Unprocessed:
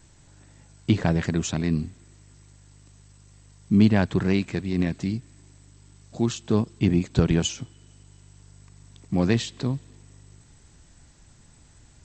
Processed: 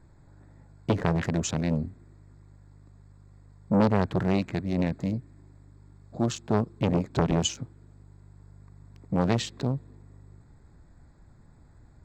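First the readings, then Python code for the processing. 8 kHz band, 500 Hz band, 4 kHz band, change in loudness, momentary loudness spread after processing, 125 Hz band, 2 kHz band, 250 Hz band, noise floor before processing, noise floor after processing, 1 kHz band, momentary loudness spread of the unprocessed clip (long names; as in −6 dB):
−1.5 dB, 0.0 dB, −2.0 dB, −3.5 dB, 11 LU, −3.5 dB, −4.0 dB, −4.0 dB, −54 dBFS, −55 dBFS, +4.0 dB, 11 LU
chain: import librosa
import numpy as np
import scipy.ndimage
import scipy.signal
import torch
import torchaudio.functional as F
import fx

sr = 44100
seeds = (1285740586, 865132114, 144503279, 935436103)

y = fx.wiener(x, sr, points=15)
y = fx.transformer_sat(y, sr, knee_hz=840.0)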